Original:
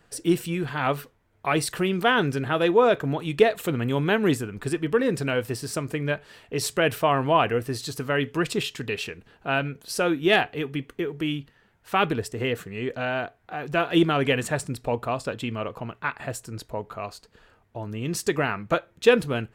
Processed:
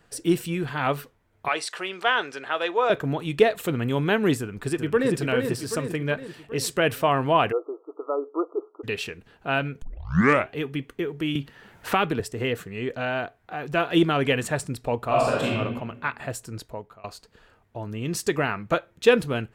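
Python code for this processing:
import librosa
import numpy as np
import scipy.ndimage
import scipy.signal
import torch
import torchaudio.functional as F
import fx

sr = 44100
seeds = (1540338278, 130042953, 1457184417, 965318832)

y = fx.bandpass_edges(x, sr, low_hz=630.0, high_hz=7000.0, at=(1.48, 2.9))
y = fx.echo_throw(y, sr, start_s=4.39, length_s=0.78, ms=390, feedback_pct=55, wet_db=-5.5)
y = fx.brickwall_bandpass(y, sr, low_hz=290.0, high_hz=1400.0, at=(7.51, 8.83), fade=0.02)
y = fx.band_squash(y, sr, depth_pct=70, at=(11.35, 12.2))
y = fx.reverb_throw(y, sr, start_s=15.05, length_s=0.49, rt60_s=1.1, drr_db=-5.5)
y = fx.edit(y, sr, fx.tape_start(start_s=9.82, length_s=0.71),
    fx.fade_out_to(start_s=16.57, length_s=0.47, floor_db=-23.0), tone=tone)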